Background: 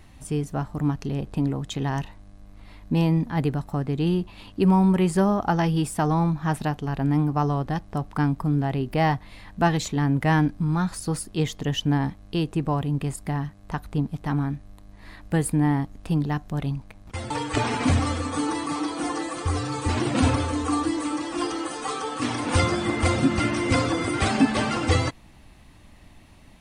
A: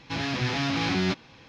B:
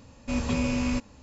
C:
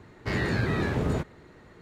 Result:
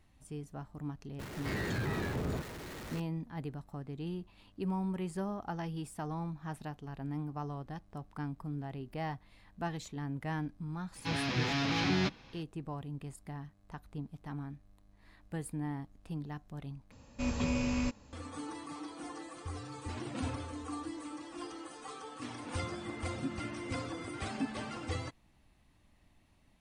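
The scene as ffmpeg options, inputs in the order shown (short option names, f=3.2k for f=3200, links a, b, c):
-filter_complex "[0:a]volume=-16.5dB[a];[3:a]aeval=exprs='val(0)+0.5*0.0335*sgn(val(0))':c=same[b];[a]asplit=2[c][d];[c]atrim=end=16.914[e];[2:a]atrim=end=1.22,asetpts=PTS-STARTPTS,volume=-5.5dB[f];[d]atrim=start=18.126[g];[b]atrim=end=1.81,asetpts=PTS-STARTPTS,volume=-10.5dB,afade=t=in:d=0.004:c=hsin,afade=t=out:st=1.806:d=0.004:c=hsin,adelay=1190[h];[1:a]atrim=end=1.48,asetpts=PTS-STARTPTS,volume=-5dB,afade=t=in:d=0.004:c=hsin,afade=t=out:st=1.476:d=0.004:c=hsin,adelay=10950[i];[e][f]acrossfade=d=0.004:c1=hsin:c2=hsin[j];[j][g]acrossfade=d=0.004:c1=hsin:c2=hsin[k];[k][h][i]amix=inputs=3:normalize=0"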